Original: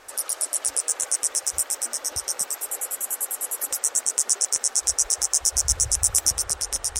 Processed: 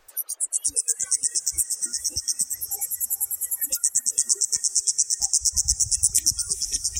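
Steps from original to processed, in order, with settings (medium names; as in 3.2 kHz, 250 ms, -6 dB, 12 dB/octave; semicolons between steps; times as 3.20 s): spectral noise reduction 24 dB; 4.80–5.20 s: elliptic high-pass 1.5 kHz; reverb removal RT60 1.7 s; echo that smears into a reverb 452 ms, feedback 42%, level -15.5 dB; three bands compressed up and down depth 40%; trim +2.5 dB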